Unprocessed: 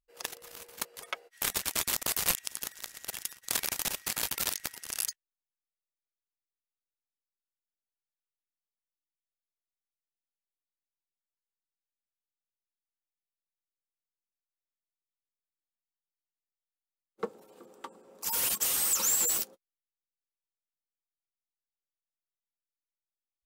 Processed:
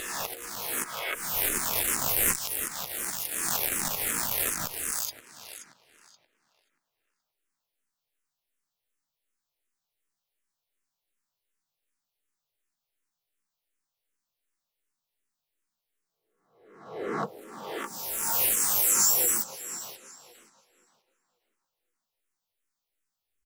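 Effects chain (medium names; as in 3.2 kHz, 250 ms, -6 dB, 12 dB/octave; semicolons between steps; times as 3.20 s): reverse spectral sustain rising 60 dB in 0.94 s; on a send: tape echo 529 ms, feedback 30%, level -15 dB, low-pass 4.4 kHz; on the sum: transient shaper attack -5 dB, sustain -1 dB; in parallel at +1 dB: compression 8:1, threshold -39 dBFS, peak gain reduction 19 dB; on the sum: harmony voices -5 st -7 dB, +7 st -8 dB; dynamic bell 4.2 kHz, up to -8 dB, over -41 dBFS, Q 0.99; barber-pole phaser -2.7 Hz; trim +3 dB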